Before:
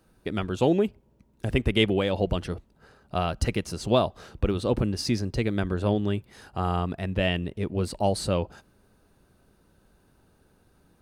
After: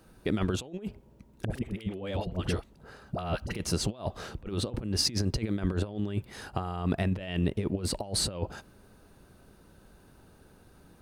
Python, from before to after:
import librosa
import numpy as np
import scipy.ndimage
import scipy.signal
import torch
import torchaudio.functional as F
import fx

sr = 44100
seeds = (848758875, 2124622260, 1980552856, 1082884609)

y = fx.over_compress(x, sr, threshold_db=-30.0, ratio=-0.5)
y = fx.dispersion(y, sr, late='highs', ms=55.0, hz=660.0, at=(1.45, 3.55))